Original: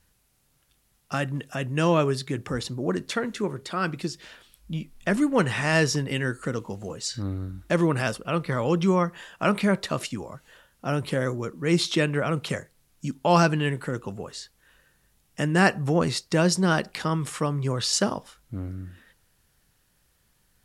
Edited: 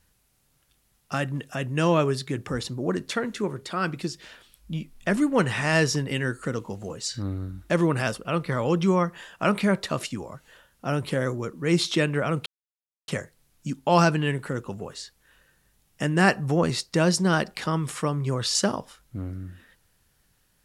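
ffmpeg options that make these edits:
-filter_complex "[0:a]asplit=2[s0][s1];[s0]atrim=end=12.46,asetpts=PTS-STARTPTS,afade=t=out:st=12.456:d=0.004:c=hsin,apad=pad_dur=0.62[s2];[s1]atrim=start=12.46,asetpts=PTS-STARTPTS,afade=t=in:d=0.004:c=hsin[s3];[s2][s3]concat=n=2:v=0:a=1"

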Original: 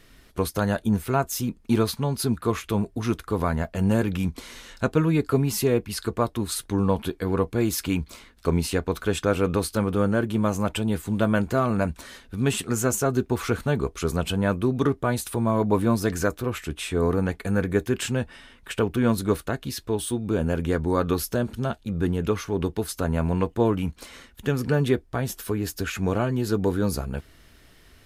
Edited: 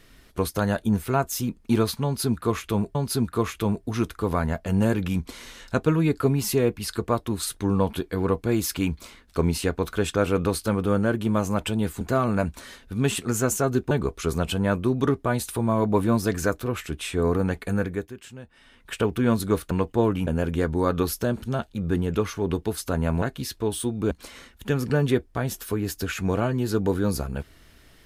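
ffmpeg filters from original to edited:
-filter_complex "[0:a]asplit=10[s0][s1][s2][s3][s4][s5][s6][s7][s8][s9];[s0]atrim=end=2.952[s10];[s1]atrim=start=2.038:end=11.102[s11];[s2]atrim=start=11.428:end=13.332[s12];[s3]atrim=start=13.688:end=17.92,asetpts=PTS-STARTPTS,afade=t=out:st=3.802:d=0.43:silence=0.158489[s13];[s4]atrim=start=17.92:end=18.28,asetpts=PTS-STARTPTS,volume=0.158[s14];[s5]atrim=start=18.28:end=19.492,asetpts=PTS-STARTPTS,afade=t=in:d=0.43:silence=0.158489[s15];[s6]atrim=start=23.328:end=23.892[s16];[s7]atrim=start=20.378:end=23.332[s17];[s8]atrim=start=19.488:end=20.382[s18];[s9]atrim=start=23.888[s19];[s10][s11]acrossfade=d=0.004:c1=hsin:c2=hsin[s20];[s20][s12]acrossfade=d=0.004:c1=hsin:c2=hsin[s21];[s13][s14][s15]concat=n=3:v=0:a=1[s22];[s21][s22]acrossfade=d=0.004:c1=hsin:c2=hsin[s23];[s23][s16]acrossfade=d=0.004:c1=hsin:c2=hsin[s24];[s24][s17]acrossfade=d=0.004:c1=hsin:c2=hsin[s25];[s25][s18]acrossfade=d=0.004:c1=hsin:c2=hsin[s26];[s26][s19]acrossfade=d=0.004:c1=hsin:c2=hsin"

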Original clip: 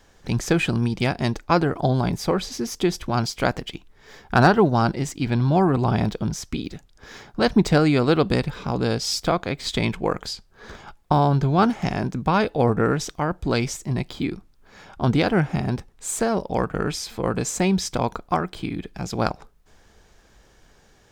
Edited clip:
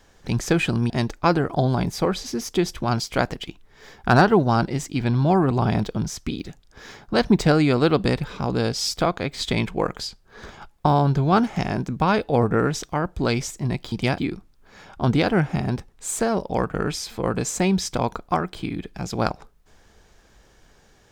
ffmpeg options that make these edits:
-filter_complex "[0:a]asplit=4[s0][s1][s2][s3];[s0]atrim=end=0.902[s4];[s1]atrim=start=1.158:end=14.182[s5];[s2]atrim=start=0.898:end=1.162[s6];[s3]atrim=start=14.178[s7];[s4][s5]acrossfade=d=0.004:c1=hsin:c2=hsin[s8];[s8][s6]acrossfade=d=0.004:c1=hsin:c2=hsin[s9];[s9][s7]acrossfade=d=0.004:c1=hsin:c2=hsin"

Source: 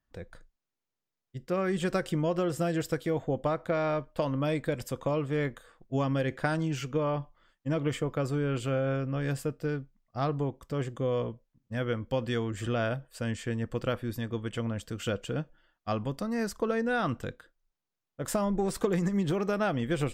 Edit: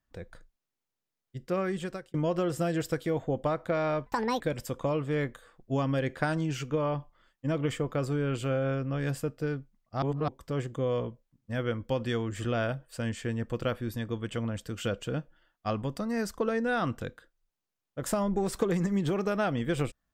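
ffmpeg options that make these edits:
-filter_complex "[0:a]asplit=6[s0][s1][s2][s3][s4][s5];[s0]atrim=end=2.14,asetpts=PTS-STARTPTS,afade=t=out:st=1.57:d=0.57[s6];[s1]atrim=start=2.14:end=4.064,asetpts=PTS-STARTPTS,afade=t=in:d=0.004:c=hsin[s7];[s2]atrim=start=4.06:end=4.62,asetpts=PTS-STARTPTS,asetrate=72324,aresample=44100[s8];[s3]atrim=start=4.616:end=10.242[s9];[s4]atrim=start=10.238:end=10.502,asetpts=PTS-STARTPTS,areverse[s10];[s5]atrim=start=10.498[s11];[s6][s7]concat=n=2:v=0:a=1[s12];[s12][s8]acrossfade=d=0.004:c1=hsin:c2=hsin[s13];[s13][s9]acrossfade=d=0.004:c1=hsin:c2=hsin[s14];[s14][s10]acrossfade=d=0.004:c1=hsin:c2=hsin[s15];[s15][s11]acrossfade=d=0.004:c1=hsin:c2=hsin"

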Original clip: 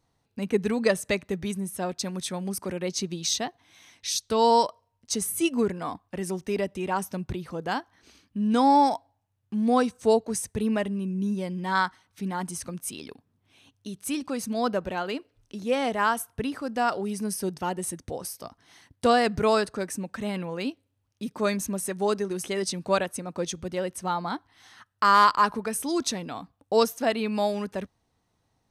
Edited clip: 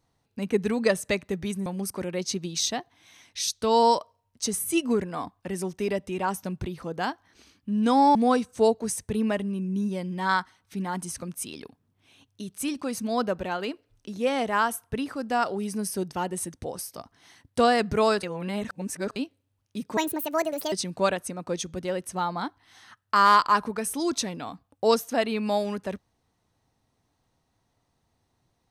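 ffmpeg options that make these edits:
-filter_complex "[0:a]asplit=7[s0][s1][s2][s3][s4][s5][s6];[s0]atrim=end=1.662[s7];[s1]atrim=start=2.338:end=8.832[s8];[s2]atrim=start=9.608:end=19.692[s9];[s3]atrim=start=19.688:end=20.622,asetpts=PTS-STARTPTS,areverse[s10];[s4]atrim=start=20.618:end=21.434[s11];[s5]atrim=start=21.43:end=22.61,asetpts=PTS-STARTPTS,asetrate=69237,aresample=44100,atrim=end_sample=33145,asetpts=PTS-STARTPTS[s12];[s6]atrim=start=22.606[s13];[s7][s8]acrossfade=d=0.004:c1=hsin:c2=hsin[s14];[s14][s9]acrossfade=d=0.004:c1=hsin:c2=hsin[s15];[s15][s10]acrossfade=d=0.004:c1=hsin:c2=hsin[s16];[s16][s11]acrossfade=d=0.004:c1=hsin:c2=hsin[s17];[s17][s12]acrossfade=d=0.004:c1=hsin:c2=hsin[s18];[s18][s13]acrossfade=d=0.004:c1=hsin:c2=hsin"

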